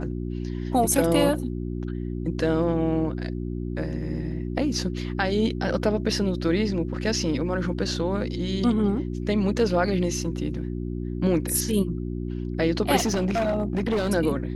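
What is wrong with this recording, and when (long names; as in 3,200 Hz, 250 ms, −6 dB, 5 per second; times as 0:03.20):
mains hum 60 Hz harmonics 6 −30 dBFS
0:12.96–0:14.10: clipping −20 dBFS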